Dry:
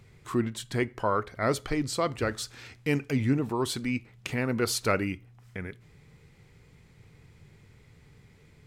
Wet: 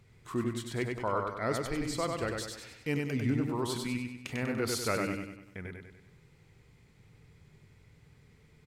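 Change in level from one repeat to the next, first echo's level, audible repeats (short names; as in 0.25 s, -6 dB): -6.5 dB, -3.5 dB, 5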